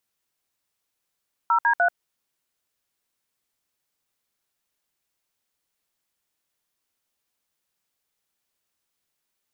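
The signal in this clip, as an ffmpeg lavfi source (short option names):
-f lavfi -i "aevalsrc='0.112*clip(min(mod(t,0.149),0.087-mod(t,0.149))/0.002,0,1)*(eq(floor(t/0.149),0)*(sin(2*PI*941*mod(t,0.149))+sin(2*PI*1336*mod(t,0.149)))+eq(floor(t/0.149),1)*(sin(2*PI*941*mod(t,0.149))+sin(2*PI*1633*mod(t,0.149)))+eq(floor(t/0.149),2)*(sin(2*PI*697*mod(t,0.149))+sin(2*PI*1477*mod(t,0.149))))':d=0.447:s=44100"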